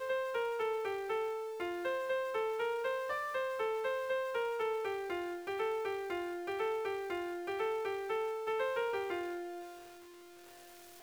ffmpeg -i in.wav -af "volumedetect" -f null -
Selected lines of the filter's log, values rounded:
mean_volume: -36.9 dB
max_volume: -25.0 dB